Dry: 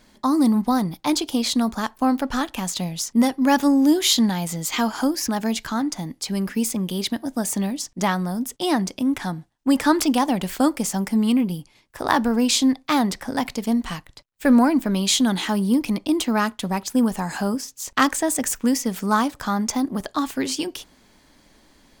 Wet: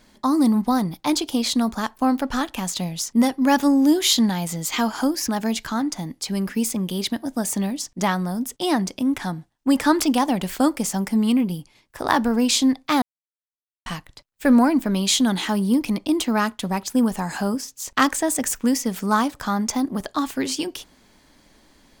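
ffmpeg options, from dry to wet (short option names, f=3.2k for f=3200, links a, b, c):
-filter_complex "[0:a]asplit=3[a][b][c];[a]atrim=end=13.02,asetpts=PTS-STARTPTS,afade=t=out:st=13.016:d=0.004:c=hsin[d];[b]atrim=start=13.02:end=13.86,asetpts=PTS-STARTPTS,volume=0[e];[c]atrim=start=13.86,asetpts=PTS-STARTPTS,afade=t=in:d=0.004:c=hsin[f];[d][e][f]concat=n=3:v=0:a=1"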